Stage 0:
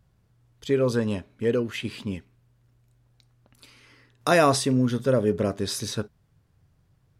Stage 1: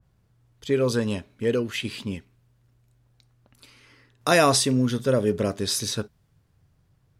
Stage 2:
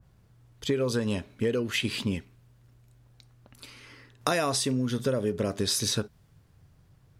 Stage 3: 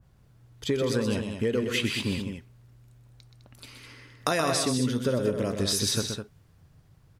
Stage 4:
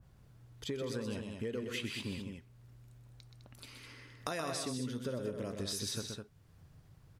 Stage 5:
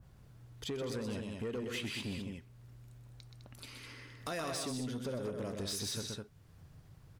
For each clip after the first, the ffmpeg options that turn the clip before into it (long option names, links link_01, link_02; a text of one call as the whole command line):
ffmpeg -i in.wav -af "adynamicequalizer=threshold=0.0126:dfrequency=2300:dqfactor=0.7:tfrequency=2300:tqfactor=0.7:attack=5:release=100:ratio=0.375:range=3:mode=boostabove:tftype=highshelf" out.wav
ffmpeg -i in.wav -af "acompressor=threshold=-28dB:ratio=10,volume=4.5dB" out.wav
ffmpeg -i in.wav -af "aecho=1:1:125.4|207:0.447|0.398" out.wav
ffmpeg -i in.wav -af "acompressor=threshold=-53dB:ratio=1.5,volume=-1.5dB" out.wav
ffmpeg -i in.wav -af "asoftclip=type=tanh:threshold=-35dB,volume=2.5dB" out.wav